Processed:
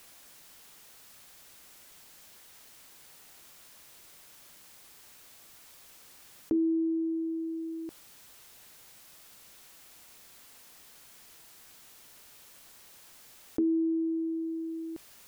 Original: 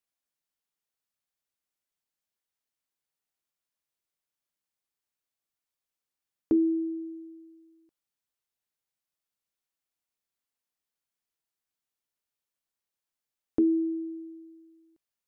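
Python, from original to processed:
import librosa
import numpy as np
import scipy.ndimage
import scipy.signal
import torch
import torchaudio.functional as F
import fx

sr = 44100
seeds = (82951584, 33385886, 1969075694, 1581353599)

y = fx.env_flatten(x, sr, amount_pct=70)
y = y * 10.0 ** (-5.0 / 20.0)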